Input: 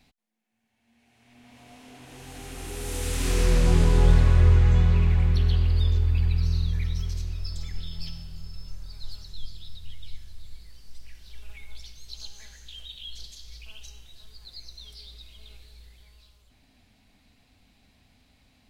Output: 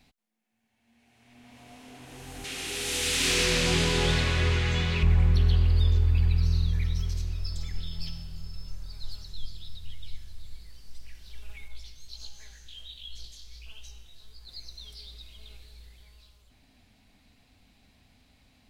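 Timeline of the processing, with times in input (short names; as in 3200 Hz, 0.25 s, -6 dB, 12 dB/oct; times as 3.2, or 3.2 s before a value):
2.44–5.03 weighting filter D
11.68–14.49 chorus 1.4 Hz, delay 15.5 ms, depth 7.8 ms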